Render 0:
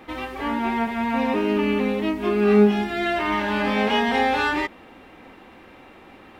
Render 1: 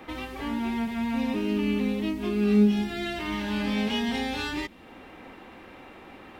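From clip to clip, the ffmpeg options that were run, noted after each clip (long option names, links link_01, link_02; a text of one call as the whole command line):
ffmpeg -i in.wav -filter_complex "[0:a]acrossover=split=280|3000[link_01][link_02][link_03];[link_02]acompressor=threshold=-40dB:ratio=3[link_04];[link_01][link_04][link_03]amix=inputs=3:normalize=0" out.wav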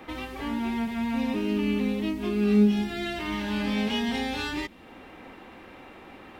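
ffmpeg -i in.wav -af anull out.wav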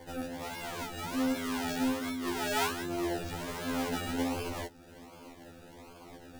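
ffmpeg -i in.wav -af "acrusher=samples=33:mix=1:aa=0.000001:lfo=1:lforange=19.8:lforate=1.3,bandreject=frequency=60:width_type=h:width=6,bandreject=frequency=120:width_type=h:width=6,bandreject=frequency=180:width_type=h:width=6,bandreject=frequency=240:width_type=h:width=6,bandreject=frequency=300:width_type=h:width=6,bandreject=frequency=360:width_type=h:width=6,bandreject=frequency=420:width_type=h:width=6,afftfilt=real='re*2*eq(mod(b,4),0)':imag='im*2*eq(mod(b,4),0)':win_size=2048:overlap=0.75,volume=-1.5dB" out.wav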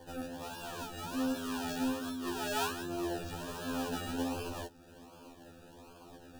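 ffmpeg -i in.wav -af "asuperstop=centerf=2100:order=8:qfactor=4.1,volume=-3dB" out.wav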